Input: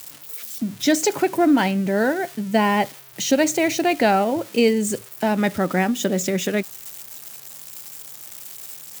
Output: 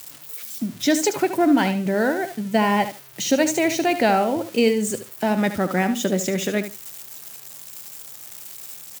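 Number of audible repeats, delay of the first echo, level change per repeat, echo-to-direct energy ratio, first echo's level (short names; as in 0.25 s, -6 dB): 2, 74 ms, -15.5 dB, -11.0 dB, -11.0 dB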